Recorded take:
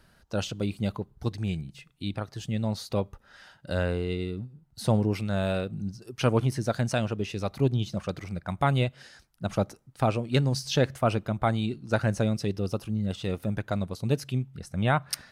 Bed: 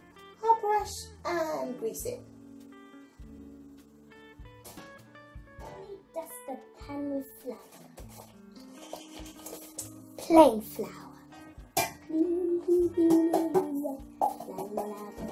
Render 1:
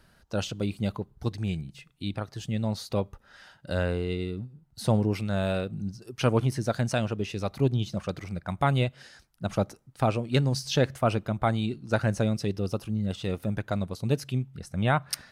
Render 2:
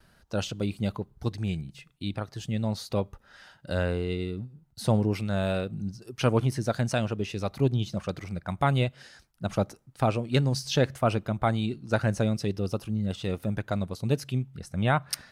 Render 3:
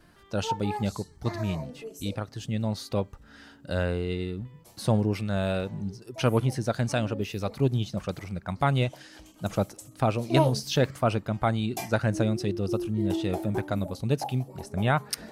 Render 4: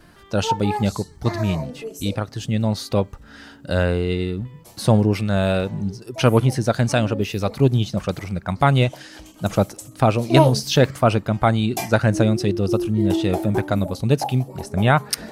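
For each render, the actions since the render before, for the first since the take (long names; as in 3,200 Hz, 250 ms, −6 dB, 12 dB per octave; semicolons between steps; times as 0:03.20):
no processing that can be heard
noise gate with hold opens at −53 dBFS
mix in bed −7 dB
level +8 dB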